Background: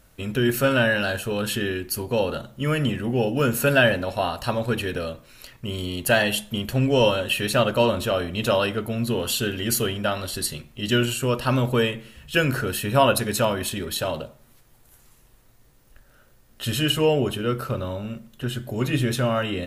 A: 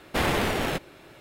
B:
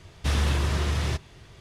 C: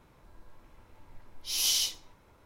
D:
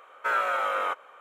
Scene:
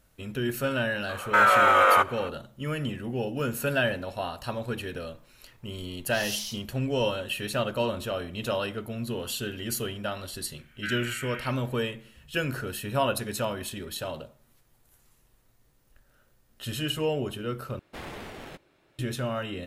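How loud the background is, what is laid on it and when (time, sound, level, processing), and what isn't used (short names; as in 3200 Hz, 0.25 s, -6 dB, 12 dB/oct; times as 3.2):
background -8 dB
1.09 add D -9.5 dB + maximiser +21.5 dB
4.65 add C -8 dB
10.58 add D -0.5 dB + elliptic band-pass 1600–3200 Hz
17.79 replace with A -15.5 dB + high shelf 11000 Hz -4 dB
not used: B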